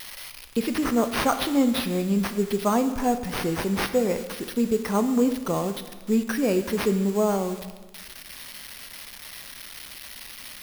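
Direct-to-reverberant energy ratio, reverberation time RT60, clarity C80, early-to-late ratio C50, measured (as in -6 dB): 9.0 dB, 1.3 s, 12.5 dB, 11.0 dB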